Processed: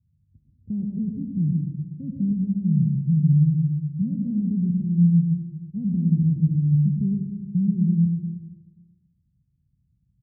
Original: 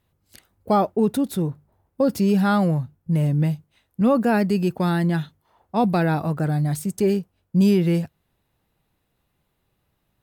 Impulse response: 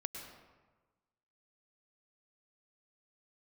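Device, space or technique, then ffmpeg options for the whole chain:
club heard from the street: -filter_complex "[0:a]aemphasis=mode=reproduction:type=riaa,alimiter=limit=-9dB:level=0:latency=1:release=336,lowpass=frequency=190:width=0.5412,lowpass=frequency=190:width=1.3066[link_01];[1:a]atrim=start_sample=2205[link_02];[link_01][link_02]afir=irnorm=-1:irlink=0,highpass=100,aecho=1:1:123|246|369|492|615:0.316|0.158|0.0791|0.0395|0.0198,volume=-2dB"

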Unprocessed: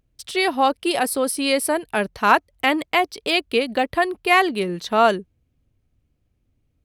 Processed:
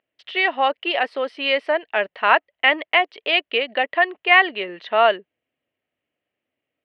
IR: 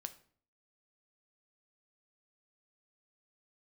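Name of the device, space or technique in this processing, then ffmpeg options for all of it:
phone earpiece: -af "highpass=450,equalizer=frequency=620:width_type=q:width=4:gain=6,equalizer=frequency=1900:width_type=q:width=4:gain=9,equalizer=frequency=2900:width_type=q:width=4:gain=8,lowpass=frequency=3300:width=0.5412,lowpass=frequency=3300:width=1.3066,volume=-2dB"

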